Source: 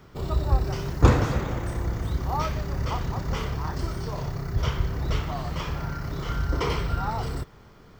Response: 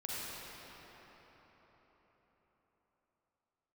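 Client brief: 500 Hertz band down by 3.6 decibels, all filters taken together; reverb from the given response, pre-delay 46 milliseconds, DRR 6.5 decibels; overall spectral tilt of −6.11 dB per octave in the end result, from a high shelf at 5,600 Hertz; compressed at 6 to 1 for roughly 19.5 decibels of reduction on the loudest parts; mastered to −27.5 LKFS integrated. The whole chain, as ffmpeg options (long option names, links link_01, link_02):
-filter_complex "[0:a]equalizer=frequency=500:width_type=o:gain=-4.5,highshelf=frequency=5600:gain=-6.5,acompressor=threshold=-33dB:ratio=6,asplit=2[link_01][link_02];[1:a]atrim=start_sample=2205,adelay=46[link_03];[link_02][link_03]afir=irnorm=-1:irlink=0,volume=-9.5dB[link_04];[link_01][link_04]amix=inputs=2:normalize=0,volume=9.5dB"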